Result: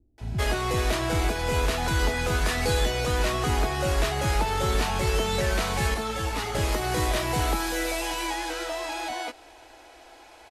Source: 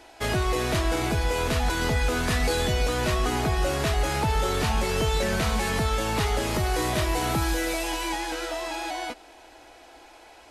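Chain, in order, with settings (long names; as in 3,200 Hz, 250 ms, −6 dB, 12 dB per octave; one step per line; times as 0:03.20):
multiband delay without the direct sound lows, highs 180 ms, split 230 Hz
0:05.94–0:06.55: string-ensemble chorus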